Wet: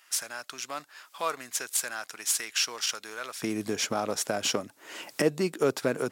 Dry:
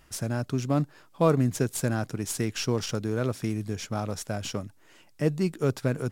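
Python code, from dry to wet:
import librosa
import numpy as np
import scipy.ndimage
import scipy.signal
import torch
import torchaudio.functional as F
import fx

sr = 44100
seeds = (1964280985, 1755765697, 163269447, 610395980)

y = fx.recorder_agc(x, sr, target_db=-17.5, rise_db_per_s=29.0, max_gain_db=30)
y = fx.highpass(y, sr, hz=fx.steps((0.0, 1300.0), (3.42, 330.0)), slope=12)
y = F.gain(torch.from_numpy(y), 3.5).numpy()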